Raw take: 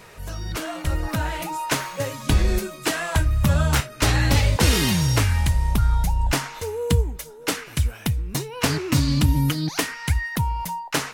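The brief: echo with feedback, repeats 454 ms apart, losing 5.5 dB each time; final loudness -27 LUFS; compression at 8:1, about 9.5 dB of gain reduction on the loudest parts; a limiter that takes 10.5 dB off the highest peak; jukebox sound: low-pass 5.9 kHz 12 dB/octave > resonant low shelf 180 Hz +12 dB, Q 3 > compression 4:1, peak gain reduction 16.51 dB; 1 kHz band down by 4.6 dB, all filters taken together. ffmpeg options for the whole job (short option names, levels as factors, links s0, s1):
-af "equalizer=f=1000:t=o:g=-5,acompressor=threshold=0.0631:ratio=8,alimiter=limit=0.0891:level=0:latency=1,lowpass=5900,lowshelf=f=180:t=q:w=3:g=12,aecho=1:1:454|908|1362|1816|2270|2724|3178:0.531|0.281|0.149|0.079|0.0419|0.0222|0.0118,acompressor=threshold=0.0447:ratio=4,volume=1.41"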